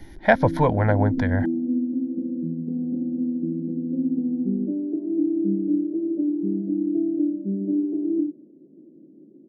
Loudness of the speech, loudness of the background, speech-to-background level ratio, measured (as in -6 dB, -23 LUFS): -21.5 LUFS, -25.5 LUFS, 4.0 dB